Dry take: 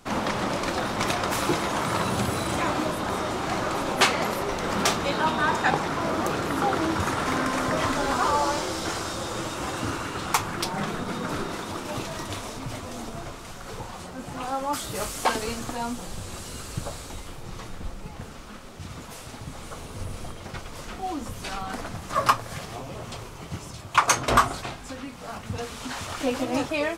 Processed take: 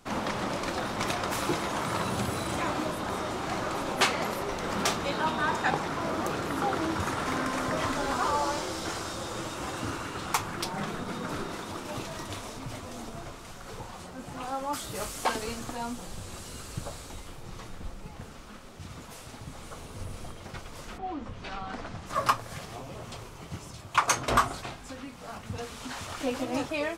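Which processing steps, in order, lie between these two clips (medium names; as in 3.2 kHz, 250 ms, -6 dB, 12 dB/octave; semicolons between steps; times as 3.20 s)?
20.97–22.05 s: low-pass 2.4 kHz -> 6.3 kHz 12 dB/octave; trim -4.5 dB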